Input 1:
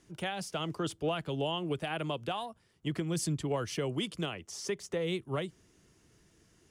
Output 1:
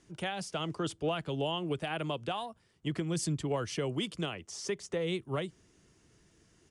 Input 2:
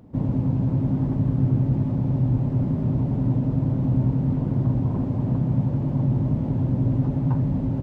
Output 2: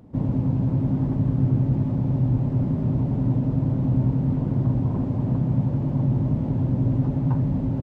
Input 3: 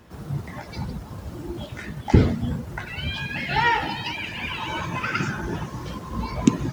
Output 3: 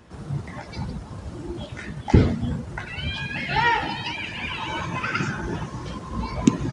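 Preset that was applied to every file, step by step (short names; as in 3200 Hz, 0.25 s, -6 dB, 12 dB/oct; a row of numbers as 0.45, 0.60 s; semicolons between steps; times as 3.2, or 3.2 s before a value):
downsampling 22050 Hz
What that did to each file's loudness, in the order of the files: 0.0, 0.0, 0.0 LU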